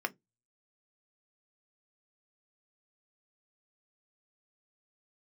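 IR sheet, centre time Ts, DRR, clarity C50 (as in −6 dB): 3 ms, 7.5 dB, 27.0 dB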